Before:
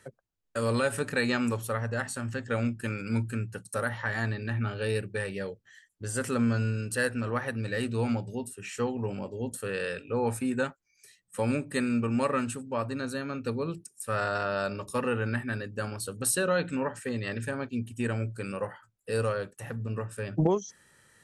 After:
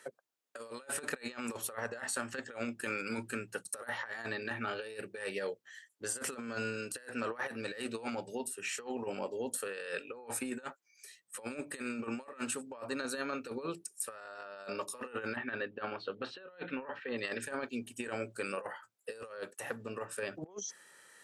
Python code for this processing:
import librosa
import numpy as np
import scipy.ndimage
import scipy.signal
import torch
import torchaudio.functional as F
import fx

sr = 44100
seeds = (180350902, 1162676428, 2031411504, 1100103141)

y = fx.steep_lowpass(x, sr, hz=3700.0, slope=36, at=(15.35, 17.17), fade=0.02)
y = scipy.signal.sosfilt(scipy.signal.butter(2, 400.0, 'highpass', fs=sr, output='sos'), y)
y = fx.over_compress(y, sr, threshold_db=-37.0, ratio=-0.5)
y = y * librosa.db_to_amplitude(-1.5)